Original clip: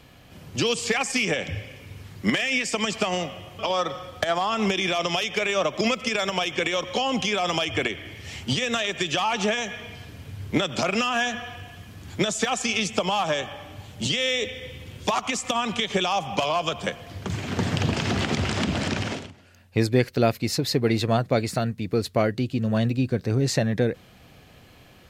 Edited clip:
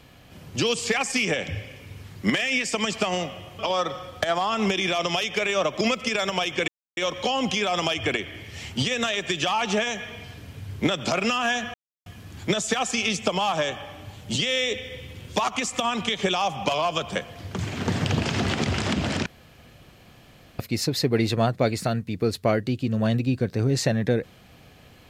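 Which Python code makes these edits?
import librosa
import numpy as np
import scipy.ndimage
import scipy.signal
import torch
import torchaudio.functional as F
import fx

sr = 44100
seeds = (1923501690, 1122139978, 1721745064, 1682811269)

y = fx.edit(x, sr, fx.insert_silence(at_s=6.68, length_s=0.29),
    fx.silence(start_s=11.45, length_s=0.32),
    fx.room_tone_fill(start_s=18.97, length_s=1.33), tone=tone)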